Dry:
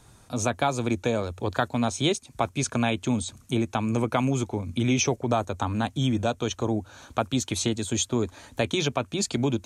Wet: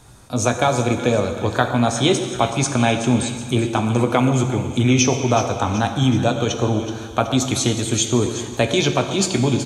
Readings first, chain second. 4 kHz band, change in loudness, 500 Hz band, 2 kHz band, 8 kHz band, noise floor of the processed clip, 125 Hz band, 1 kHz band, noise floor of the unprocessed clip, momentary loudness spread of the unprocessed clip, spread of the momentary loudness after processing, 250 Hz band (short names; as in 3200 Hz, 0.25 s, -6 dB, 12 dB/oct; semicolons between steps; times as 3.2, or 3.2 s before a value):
+7.5 dB, +7.5 dB, +8.0 dB, +7.5 dB, +7.5 dB, -33 dBFS, +8.5 dB, +7.5 dB, -55 dBFS, 5 LU, 4 LU, +7.0 dB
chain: doubler 16 ms -12 dB; on a send: split-band echo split 1400 Hz, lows 0.12 s, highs 0.375 s, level -11.5 dB; on the sum: plate-style reverb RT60 1.7 s, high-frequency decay 1×, DRR 7 dB; gain +6 dB